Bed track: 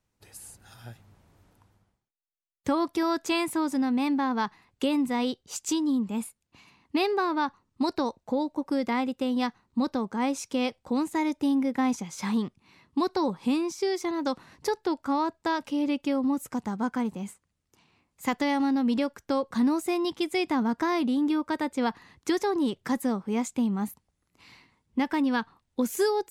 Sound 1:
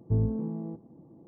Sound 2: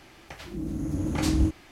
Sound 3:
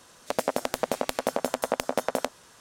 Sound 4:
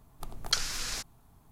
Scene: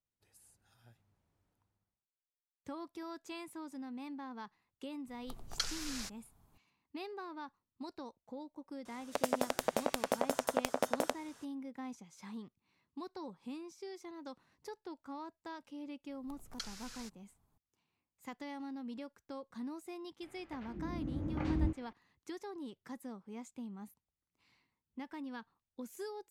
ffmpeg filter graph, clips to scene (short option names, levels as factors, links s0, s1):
-filter_complex "[4:a]asplit=2[s0][s1];[0:a]volume=0.112[s2];[3:a]bandreject=f=4200:w=24[s3];[2:a]lowpass=2100[s4];[s0]atrim=end=1.51,asetpts=PTS-STARTPTS,volume=0.398,afade=t=in:d=0.004:c=hsin,afade=t=out:st=1.506:d=0.004:c=hsin,adelay=5070[s5];[s3]atrim=end=2.6,asetpts=PTS-STARTPTS,volume=0.501,afade=t=in:d=0.004:c=hsin,afade=t=out:st=2.596:d=0.004:c=hsin,adelay=8850[s6];[s1]atrim=end=1.51,asetpts=PTS-STARTPTS,volume=0.158,afade=t=in:d=0.004:c=hsin,afade=t=out:st=1.506:d=0.004:c=hsin,adelay=16070[s7];[s4]atrim=end=1.71,asetpts=PTS-STARTPTS,volume=0.335,afade=t=in:d=0.004:c=hsin,afade=t=out:st=1.706:d=0.004:c=hsin,adelay=20220[s8];[s2][s5][s6][s7][s8]amix=inputs=5:normalize=0"